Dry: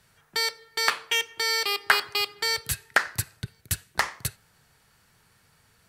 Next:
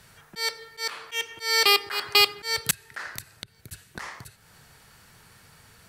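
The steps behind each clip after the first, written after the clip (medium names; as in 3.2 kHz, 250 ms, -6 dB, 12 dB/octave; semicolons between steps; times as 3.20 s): slow attack 277 ms; trim +8.5 dB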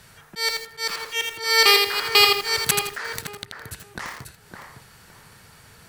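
in parallel at -11 dB: saturation -17 dBFS, distortion -8 dB; on the sum: tape echo 562 ms, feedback 30%, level -4 dB, low-pass 1.2 kHz; bit-crushed delay 82 ms, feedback 35%, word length 6-bit, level -4 dB; trim +1.5 dB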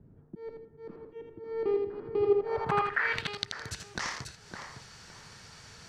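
low-pass sweep 300 Hz -> 5.9 kHz, 2.20–3.49 s; trim -2.5 dB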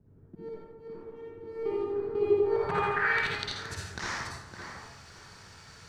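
in parallel at -7.5 dB: crossover distortion -52 dBFS; on the sum: reverberation RT60 1.0 s, pre-delay 43 ms, DRR -5.5 dB; trim -7.5 dB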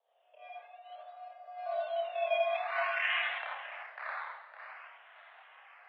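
decimation with a swept rate 13×, swing 60% 0.52 Hz; mistuned SSB +270 Hz 360–2800 Hz; chorus voices 4, 0.37 Hz, delay 29 ms, depth 2.2 ms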